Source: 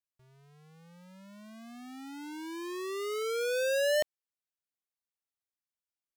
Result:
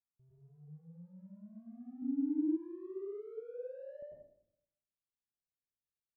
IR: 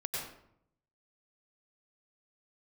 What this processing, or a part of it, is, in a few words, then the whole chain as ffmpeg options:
television next door: -filter_complex "[0:a]acompressor=threshold=-37dB:ratio=5,lowpass=250[link_01];[1:a]atrim=start_sample=2205[link_02];[link_01][link_02]afir=irnorm=-1:irlink=0,asplit=3[link_03][link_04][link_05];[link_03]afade=type=out:start_time=2.02:duration=0.02[link_06];[link_04]lowshelf=frequency=440:width_type=q:width=1.5:gain=11.5,afade=type=in:start_time=2.02:duration=0.02,afade=type=out:start_time=2.56:duration=0.02[link_07];[link_05]afade=type=in:start_time=2.56:duration=0.02[link_08];[link_06][link_07][link_08]amix=inputs=3:normalize=0,volume=-1dB"

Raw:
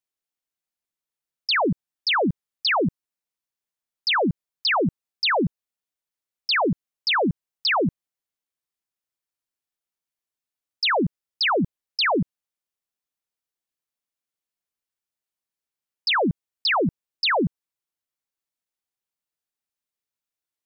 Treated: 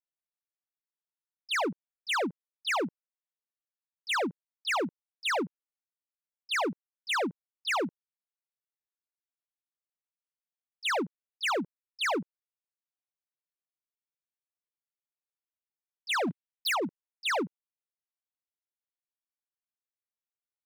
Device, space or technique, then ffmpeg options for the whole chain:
walkie-talkie: -filter_complex "[0:a]asplit=3[link_01][link_02][link_03];[link_01]afade=type=out:start_time=16.26:duration=0.02[link_04];[link_02]equalizer=frequency=125:width_type=o:width=1:gain=4,equalizer=frequency=250:width_type=o:width=1:gain=7,equalizer=frequency=500:width_type=o:width=1:gain=-9,equalizer=frequency=1000:width_type=o:width=1:gain=-3,equalizer=frequency=2000:width_type=o:width=1:gain=5,equalizer=frequency=4000:width_type=o:width=1:gain=10,afade=type=in:start_time=16.26:duration=0.02,afade=type=out:start_time=16.83:duration=0.02[link_05];[link_03]afade=type=in:start_time=16.83:duration=0.02[link_06];[link_04][link_05][link_06]amix=inputs=3:normalize=0,highpass=430,lowpass=2400,asoftclip=type=hard:threshold=-27dB,agate=range=-12dB:threshold=-32dB:ratio=16:detection=peak"

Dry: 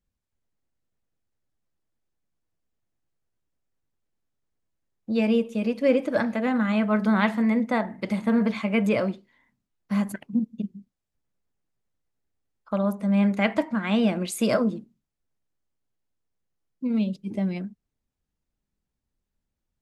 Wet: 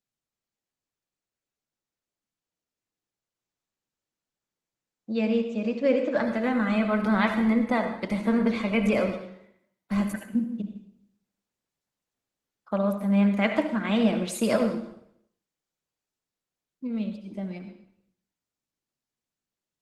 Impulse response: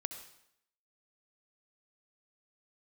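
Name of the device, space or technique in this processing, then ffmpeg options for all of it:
far-field microphone of a smart speaker: -filter_complex "[1:a]atrim=start_sample=2205[link_01];[0:a][link_01]afir=irnorm=-1:irlink=0,highpass=160,dynaudnorm=framelen=740:gausssize=13:maxgain=13dB,volume=-6dB" -ar 48000 -c:a libopus -b:a 16k

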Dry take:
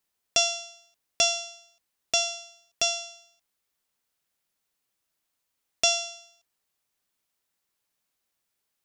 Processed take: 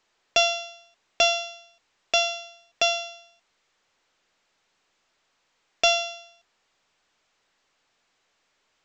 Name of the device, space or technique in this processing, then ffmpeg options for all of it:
telephone: -filter_complex "[0:a]asettb=1/sr,asplit=3[link_01][link_02][link_03];[link_01]atrim=end=1.424[link_04];[link_02]atrim=start=1.42:end=2.45,asetpts=PTS-STARTPTS,afade=type=in:duration=0.004:curve=qsin,afade=type=out:start_time=1.026:duration=0.004:curve=qsin,lowshelf=frequency=480:gain=-2.5[link_05];[link_03]atrim=start=2.446[link_06];[link_04][link_05]acrossfade=duration=0.004:curve1=hsin:curve2=qsin[link_07];[link_07][link_06]acrossfade=duration=0.004:curve1=qsin:curve2=hsin,highpass=350,lowpass=3300,asoftclip=type=tanh:threshold=-19dB,volume=8.5dB" -ar 16000 -c:a pcm_alaw

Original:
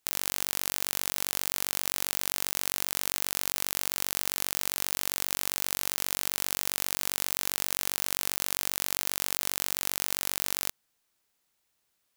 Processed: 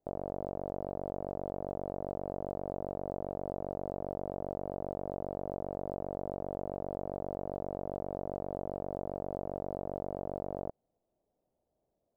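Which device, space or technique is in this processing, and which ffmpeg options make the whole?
under water: -af "lowpass=frequency=650:width=0.5412,lowpass=frequency=650:width=1.3066,equalizer=frequency=640:width_type=o:width=0.58:gain=8.5,volume=5.5dB"

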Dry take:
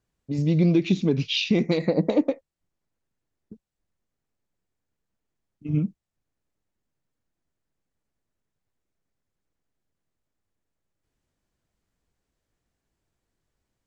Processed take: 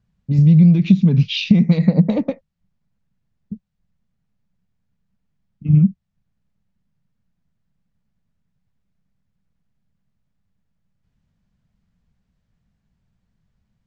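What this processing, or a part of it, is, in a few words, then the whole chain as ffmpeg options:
jukebox: -af "lowpass=5100,lowshelf=frequency=250:width_type=q:width=3:gain=8.5,acompressor=threshold=-12dB:ratio=4,volume=3dB"

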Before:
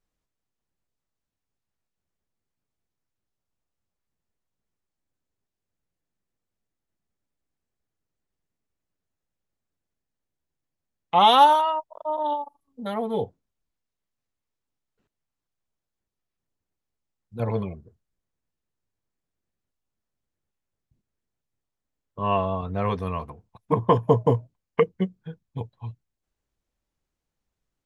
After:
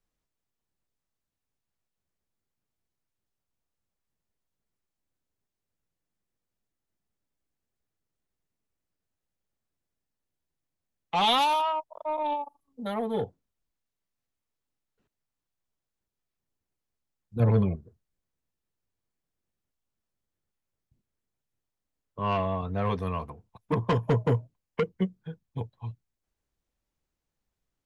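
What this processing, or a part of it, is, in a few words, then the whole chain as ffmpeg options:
one-band saturation: -filter_complex "[0:a]asettb=1/sr,asplit=3[link_01][link_02][link_03];[link_01]atrim=end=17.364[link_04];[link_02]atrim=start=17.36:end=17.76,asetpts=PTS-STARTPTS,afade=type=in:duration=0.004:curve=qsin,afade=type=out:start_time=0.396:duration=0.004:curve=qsin,lowshelf=frequency=430:gain=9[link_05];[link_03]atrim=start=17.756[link_06];[link_04][link_05]acrossfade=duration=0.004:curve1=hsin:curve2=qsin[link_07];[link_07][link_06]acrossfade=duration=0.004:curve1=qsin:curve2=hsin,acrossover=split=230|2400[link_08][link_09][link_10];[link_09]asoftclip=type=tanh:threshold=-21dB[link_11];[link_08][link_11][link_10]amix=inputs=3:normalize=0,volume=-1.5dB"

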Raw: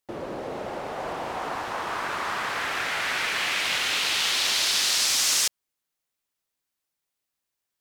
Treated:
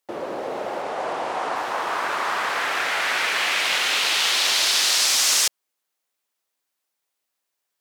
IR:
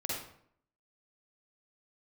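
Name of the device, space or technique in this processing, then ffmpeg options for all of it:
filter by subtraction: -filter_complex "[0:a]asplit=2[link_01][link_02];[link_02]lowpass=570,volume=-1[link_03];[link_01][link_03]amix=inputs=2:normalize=0,asettb=1/sr,asplit=3[link_04][link_05][link_06];[link_04]atrim=end=0.824[link_07];[link_05]atrim=start=0.82:end=1.56,asetpts=PTS-STARTPTS,afade=type=in:duration=0.004:curve=qsin,afade=type=out:start_time=0.736:duration=0.004:curve=qsin,lowpass=frequency=11000:width=0.5412,lowpass=frequency=11000:width=1.3066[link_08];[link_06]atrim=start=1.556[link_09];[link_07][link_08]acrossfade=duration=0.004:curve1=hsin:curve2=qsin[link_10];[link_10][link_09]acrossfade=duration=0.004:curve1=qsin:curve2=hsin,volume=3.5dB"

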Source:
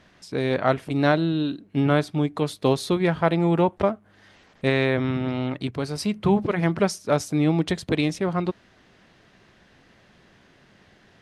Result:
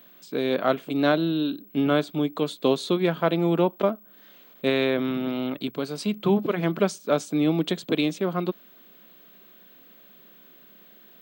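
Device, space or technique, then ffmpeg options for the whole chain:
old television with a line whistle: -af "highpass=frequency=180:width=0.5412,highpass=frequency=180:width=1.3066,equalizer=frequency=850:width_type=q:width=4:gain=-6,equalizer=frequency=1900:width_type=q:width=4:gain=-7,equalizer=frequency=3400:width_type=q:width=4:gain=4,equalizer=frequency=5400:width_type=q:width=4:gain=-8,lowpass=frequency=8400:width=0.5412,lowpass=frequency=8400:width=1.3066,aeval=exprs='val(0)+0.00316*sin(2*PI*15734*n/s)':channel_layout=same"

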